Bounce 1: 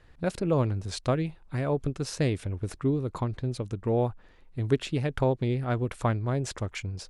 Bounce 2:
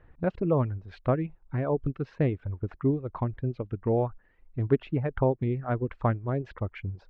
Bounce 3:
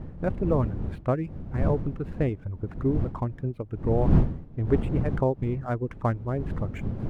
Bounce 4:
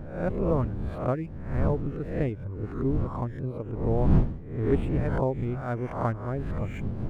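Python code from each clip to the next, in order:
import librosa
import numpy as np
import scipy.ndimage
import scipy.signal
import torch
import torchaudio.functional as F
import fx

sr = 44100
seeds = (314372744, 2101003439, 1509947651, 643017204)

y1 = scipy.signal.sosfilt(scipy.signal.bessel(4, 1600.0, 'lowpass', norm='mag', fs=sr, output='sos'), x)
y1 = fx.dereverb_blind(y1, sr, rt60_s=1.1)
y1 = F.gain(torch.from_numpy(y1), 1.5).numpy()
y2 = scipy.ndimage.median_filter(y1, 9, mode='constant')
y2 = fx.dmg_wind(y2, sr, seeds[0], corner_hz=150.0, level_db=-29.0)
y3 = fx.spec_swells(y2, sr, rise_s=0.6)
y3 = F.gain(torch.from_numpy(y3), -3.0).numpy()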